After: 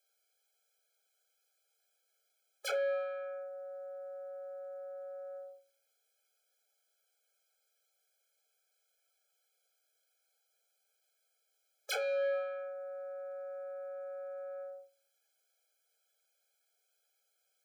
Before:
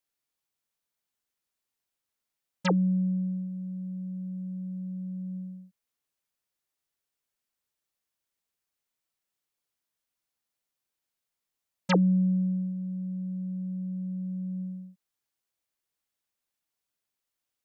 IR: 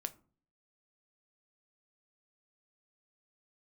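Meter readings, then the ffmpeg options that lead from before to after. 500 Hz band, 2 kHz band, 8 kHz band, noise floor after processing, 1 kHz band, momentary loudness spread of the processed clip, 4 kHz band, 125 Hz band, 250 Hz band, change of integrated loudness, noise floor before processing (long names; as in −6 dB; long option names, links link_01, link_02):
+5.0 dB, −1.5 dB, can't be measured, −80 dBFS, −7.0 dB, 13 LU, −2.5 dB, below −40 dB, below −40 dB, −9.5 dB, below −85 dBFS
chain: -filter_complex "[0:a]aeval=exprs='0.0376*(abs(mod(val(0)/0.0376+3,4)-2)-1)':channel_layout=same,aeval=exprs='(tanh(112*val(0)+0.2)-tanh(0.2))/112':channel_layout=same[link_01];[1:a]atrim=start_sample=2205[link_02];[link_01][link_02]afir=irnorm=-1:irlink=0,afftfilt=real='re*eq(mod(floor(b*sr/1024/430),2),1)':imag='im*eq(mod(floor(b*sr/1024/430),2),1)':win_size=1024:overlap=0.75,volume=12.5dB"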